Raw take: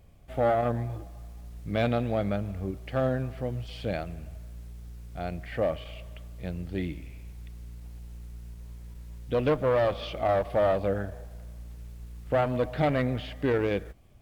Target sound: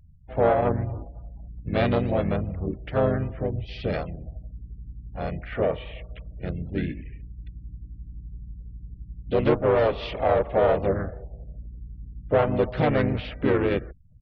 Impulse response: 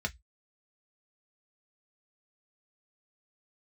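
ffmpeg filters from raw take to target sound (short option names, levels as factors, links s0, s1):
-filter_complex "[0:a]afftfilt=real='re*gte(hypot(re,im),0.00447)':imag='im*gte(hypot(re,im),0.00447)':win_size=1024:overlap=0.75,asplit=3[s0][s1][s2];[s1]asetrate=35002,aresample=44100,atempo=1.25992,volume=0.794[s3];[s2]asetrate=52444,aresample=44100,atempo=0.840896,volume=0.282[s4];[s0][s3][s4]amix=inputs=3:normalize=0,volume=1.19"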